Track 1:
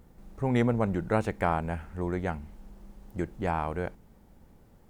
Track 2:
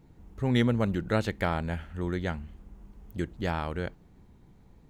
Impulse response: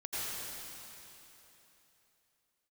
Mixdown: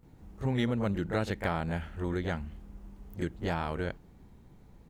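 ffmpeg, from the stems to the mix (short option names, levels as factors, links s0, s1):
-filter_complex "[0:a]volume=0.355[s0];[1:a]adelay=30,volume=1.06[s1];[s0][s1]amix=inputs=2:normalize=0,acompressor=threshold=0.0355:ratio=2"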